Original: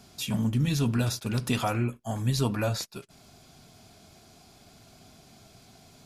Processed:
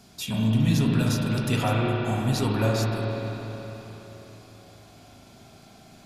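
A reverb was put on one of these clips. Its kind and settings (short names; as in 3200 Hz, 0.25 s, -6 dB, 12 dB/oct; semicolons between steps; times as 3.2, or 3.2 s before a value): spring tank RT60 4 s, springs 36/47 ms, chirp 45 ms, DRR -2.5 dB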